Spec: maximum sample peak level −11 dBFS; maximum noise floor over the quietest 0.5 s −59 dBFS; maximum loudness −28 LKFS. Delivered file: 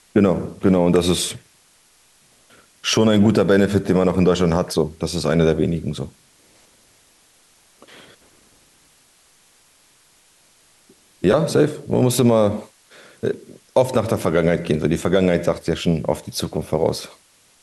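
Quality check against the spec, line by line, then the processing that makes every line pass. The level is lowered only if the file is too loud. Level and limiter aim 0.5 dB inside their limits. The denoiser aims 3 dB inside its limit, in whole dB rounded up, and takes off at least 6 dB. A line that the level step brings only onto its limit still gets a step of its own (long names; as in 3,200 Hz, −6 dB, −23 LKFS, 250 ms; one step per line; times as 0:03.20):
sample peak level −5.0 dBFS: out of spec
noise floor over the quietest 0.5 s −56 dBFS: out of spec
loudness −19.0 LKFS: out of spec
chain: level −9.5 dB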